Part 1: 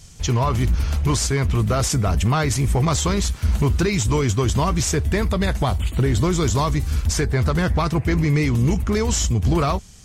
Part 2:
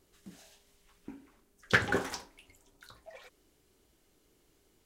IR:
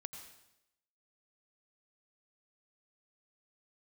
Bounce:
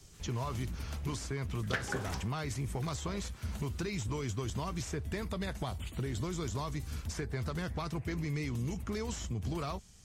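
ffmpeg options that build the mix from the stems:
-filter_complex "[0:a]volume=-12.5dB[a];[1:a]volume=2dB[b];[a][b]amix=inputs=2:normalize=0,acrossover=split=94|2700[c][d][e];[c]acompressor=threshold=-45dB:ratio=4[f];[d]acompressor=threshold=-34dB:ratio=4[g];[e]acompressor=threshold=-45dB:ratio=4[h];[f][g][h]amix=inputs=3:normalize=0"

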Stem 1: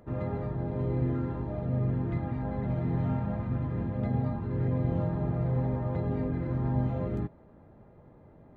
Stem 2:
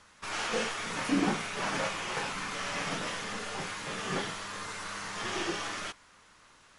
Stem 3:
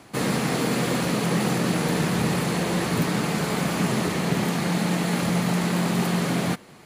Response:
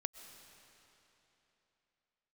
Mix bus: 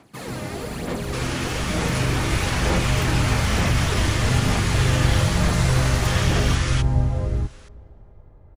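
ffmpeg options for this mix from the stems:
-filter_complex "[0:a]adelay=200,volume=-2.5dB,asplit=2[a][b];[b]volume=-7.5dB[c];[1:a]tiltshelf=f=740:g=-7,alimiter=limit=-24dB:level=0:latency=1:release=134,adelay=900,volume=-1dB,asplit=2[d][e];[e]volume=-19dB[f];[2:a]aphaser=in_gain=1:out_gain=1:delay=3.4:decay=0.55:speed=1.1:type=sinusoidal,volume=-13dB,asplit=2[g][h];[h]volume=-4dB[i];[3:a]atrim=start_sample=2205[j];[c][f][i]amix=inputs=3:normalize=0[k];[k][j]afir=irnorm=-1:irlink=0[l];[a][d][g][l]amix=inputs=4:normalize=0,asubboost=boost=11:cutoff=59,dynaudnorm=f=260:g=13:m=6dB"

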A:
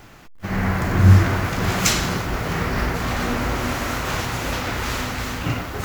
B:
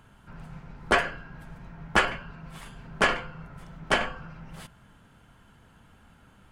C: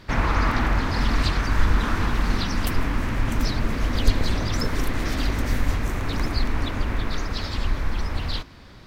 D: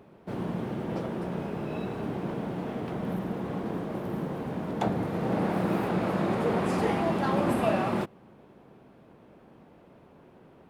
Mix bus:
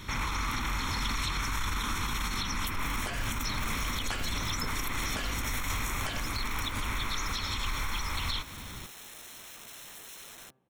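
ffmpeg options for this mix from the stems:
-filter_complex "[1:a]adelay=2150,volume=-1dB[a];[2:a]equalizer=f=700:t=o:w=0.22:g=-7.5,aecho=1:1:0.9:0.42,volume=0dB[b];[3:a]equalizer=f=1.4k:w=5.6:g=-7.5,bandreject=f=130.3:t=h:w=4,bandreject=f=260.6:t=h:w=4,bandreject=f=390.9:t=h:w=4,bandreject=f=521.2:t=h:w=4,bandreject=f=651.5:t=h:w=4,bandreject=f=781.8:t=h:w=4,bandreject=f=912.1:t=h:w=4,bandreject=f=1.0424k:t=h:w=4,bandreject=f=1.1727k:t=h:w=4,bandreject=f=1.303k:t=h:w=4,bandreject=f=1.4333k:t=h:w=4,bandreject=f=1.5636k:t=h:w=4,bandreject=f=1.6939k:t=h:w=4,aeval=exprs='(mod(23.7*val(0)+1,2)-1)/23.7':c=same,adelay=2450,volume=-10dB,afade=t=out:st=6.76:d=0.42:silence=0.281838[c];[b][c]amix=inputs=2:normalize=0,asuperstop=centerf=4700:order=8:qfactor=6.3,alimiter=limit=-14dB:level=0:latency=1:release=10,volume=0dB[d];[a][d]amix=inputs=2:normalize=0,highshelf=f=3.2k:g=11.5,acrossover=split=570|3100[e][f][g];[e]acompressor=threshold=-32dB:ratio=4[h];[f]acompressor=threshold=-33dB:ratio=4[i];[g]acompressor=threshold=-35dB:ratio=4[j];[h][i][j]amix=inputs=3:normalize=0,alimiter=limit=-22dB:level=0:latency=1:release=150"

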